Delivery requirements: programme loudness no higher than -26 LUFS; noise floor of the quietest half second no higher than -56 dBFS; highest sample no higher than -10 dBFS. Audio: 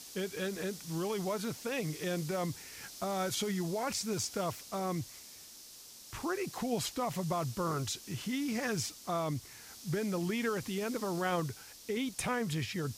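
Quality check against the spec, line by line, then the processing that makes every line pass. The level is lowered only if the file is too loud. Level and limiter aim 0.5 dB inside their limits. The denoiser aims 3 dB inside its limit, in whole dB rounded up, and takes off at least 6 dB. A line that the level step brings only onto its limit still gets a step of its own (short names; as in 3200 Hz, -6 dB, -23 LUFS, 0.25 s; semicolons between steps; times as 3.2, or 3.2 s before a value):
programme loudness -35.5 LUFS: OK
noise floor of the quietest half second -52 dBFS: fail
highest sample -19.0 dBFS: OK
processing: denoiser 7 dB, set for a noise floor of -52 dBFS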